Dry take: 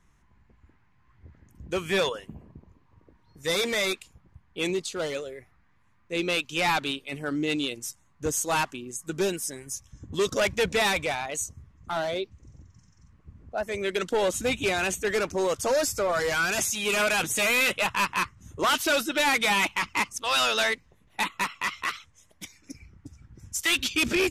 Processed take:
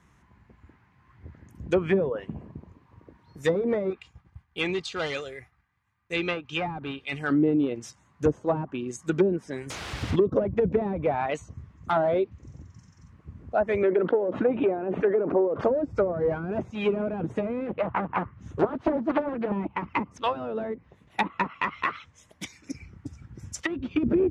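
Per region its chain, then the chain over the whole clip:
3.9–7.3 expander -56 dBFS + bell 390 Hz -10.5 dB 1.5 oct + comb 2.5 ms, depth 32%
9.7–10.16 tilt -2 dB/oct + requantised 6-bit, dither triangular
13.83–15.64 HPF 370 Hz + air absorption 390 m + fast leveller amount 70%
17.67–19.52 high shelf 5000 Hz -8.5 dB + Doppler distortion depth 0.69 ms
whole clip: treble ducked by the level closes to 350 Hz, closed at -22 dBFS; HPF 72 Hz; high shelf 3700 Hz -7 dB; gain +7 dB

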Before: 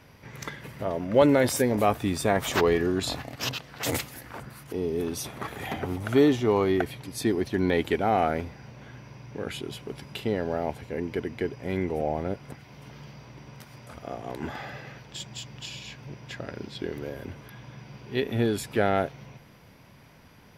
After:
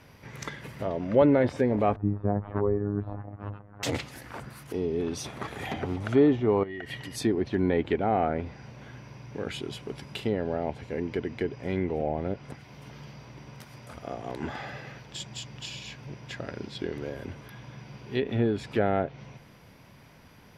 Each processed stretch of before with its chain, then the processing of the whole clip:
1.96–3.83 tilt -3.5 dB/oct + robotiser 102 Hz + ladder low-pass 1600 Hz, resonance 30%
6.63–7.16 compressor 16:1, threshold -34 dBFS + small resonant body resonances 1900/2900 Hz, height 17 dB, ringing for 25 ms
whole clip: treble ducked by the level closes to 2000 Hz, closed at -21 dBFS; dynamic EQ 1300 Hz, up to -4 dB, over -36 dBFS, Q 0.78

